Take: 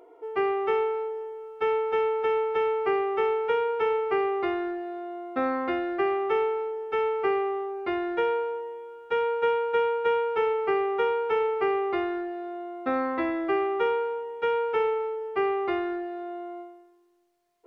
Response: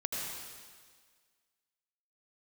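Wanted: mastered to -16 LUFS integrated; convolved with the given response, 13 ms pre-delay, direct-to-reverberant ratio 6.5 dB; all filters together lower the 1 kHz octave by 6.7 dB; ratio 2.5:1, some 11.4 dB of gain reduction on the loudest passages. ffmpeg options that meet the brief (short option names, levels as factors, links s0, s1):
-filter_complex "[0:a]equalizer=f=1000:t=o:g=-9,acompressor=threshold=0.00891:ratio=2.5,asplit=2[s0][s1];[1:a]atrim=start_sample=2205,adelay=13[s2];[s1][s2]afir=irnorm=-1:irlink=0,volume=0.299[s3];[s0][s3]amix=inputs=2:normalize=0,volume=11.2"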